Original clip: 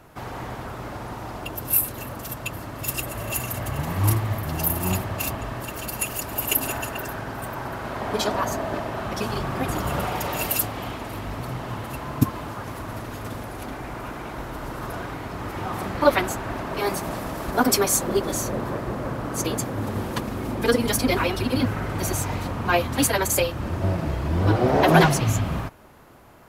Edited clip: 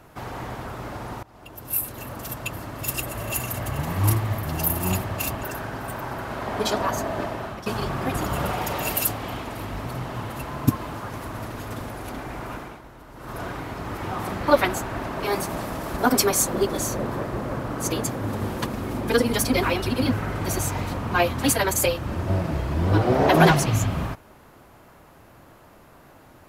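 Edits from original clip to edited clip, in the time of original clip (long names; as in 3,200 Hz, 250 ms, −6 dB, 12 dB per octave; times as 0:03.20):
0:01.23–0:02.25: fade in, from −22.5 dB
0:05.43–0:06.97: remove
0:08.74–0:09.20: fade out equal-power, to −12 dB
0:14.08–0:14.96: duck −12 dB, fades 0.28 s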